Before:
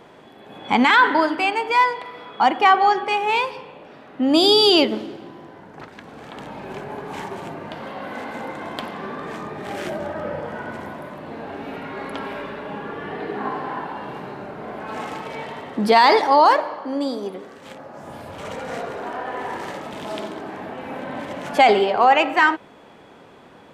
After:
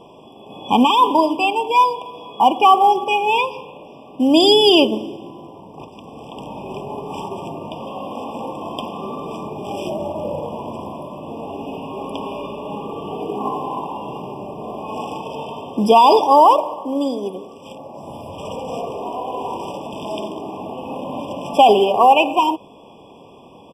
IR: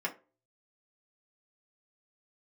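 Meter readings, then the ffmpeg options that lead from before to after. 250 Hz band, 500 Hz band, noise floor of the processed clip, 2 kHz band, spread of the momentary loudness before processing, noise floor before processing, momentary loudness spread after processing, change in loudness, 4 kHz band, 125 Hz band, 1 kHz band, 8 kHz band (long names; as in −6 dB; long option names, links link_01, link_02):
+3.5 dB, +3.5 dB, −44 dBFS, −6.5 dB, 20 LU, −47 dBFS, 20 LU, +2.5 dB, +1.5 dB, +3.5 dB, +3.5 dB, can't be measured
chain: -filter_complex "[0:a]asplit=2[link_01][link_02];[link_02]acrusher=bits=5:mode=log:mix=0:aa=0.000001,volume=-3.5dB[link_03];[link_01][link_03]amix=inputs=2:normalize=0,aresample=32000,aresample=44100,afftfilt=real='re*eq(mod(floor(b*sr/1024/1200),2),0)':imag='im*eq(mod(floor(b*sr/1024/1200),2),0)':win_size=1024:overlap=0.75,volume=-1dB"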